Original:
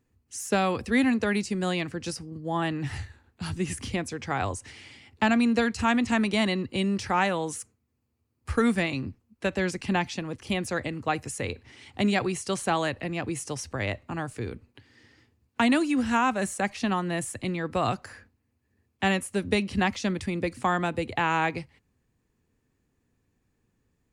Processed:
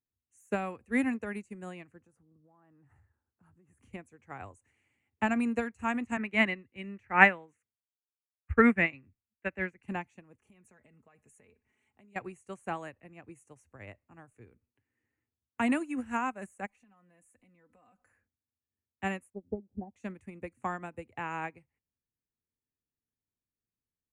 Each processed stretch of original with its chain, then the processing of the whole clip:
2–3.79 resonant high shelf 1800 Hz -9.5 dB, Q 1.5 + compressor 16:1, threshold -34 dBFS + HPF 50 Hz
6.17–9.83 EQ curve 1100 Hz 0 dB, 2000 Hz +9 dB, 7600 Hz -11 dB, 11000 Hz -17 dB + three-band expander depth 70%
10.4–12.16 notch 4800 Hz, Q 16 + comb 4.7 ms, depth 54% + compressor 20:1, threshold -31 dBFS
16.66–18.08 comb 4 ms, depth 74% + compressor, threshold -36 dBFS
19.3–19.96 de-esser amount 75% + elliptic low-pass 820 Hz + upward expander, over -41 dBFS
whole clip: band shelf 4200 Hz -14.5 dB 1 oct; notch 5100 Hz, Q 6.3; upward expander 2.5:1, over -34 dBFS; gain +2 dB

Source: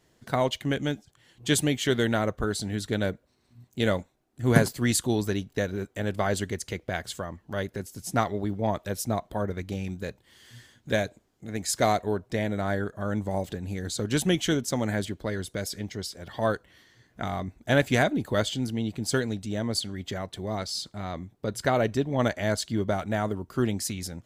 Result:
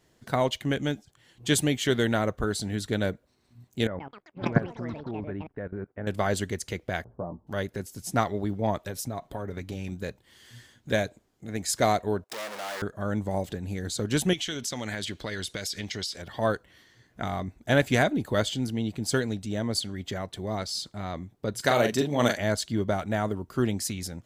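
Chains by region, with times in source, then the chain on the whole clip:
3.87–6.07 LPF 1800 Hz 24 dB/oct + level quantiser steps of 17 dB + echoes that change speed 0.13 s, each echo +7 st, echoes 3, each echo -6 dB
7.04–7.47 steep low-pass 970 Hz + doubler 17 ms -6 dB
8.86–9.92 compressor 10:1, threshold -29 dBFS + comb 7.3 ms, depth 30%
12.24–12.82 sample leveller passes 5 + hard clip -31.5 dBFS + HPF 520 Hz
14.33–16.22 bell 3700 Hz +13.5 dB 2.8 oct + compressor, threshold -29 dBFS
21.6–22.38 HPF 130 Hz + high shelf 3100 Hz +11 dB + doubler 41 ms -6 dB
whole clip: dry

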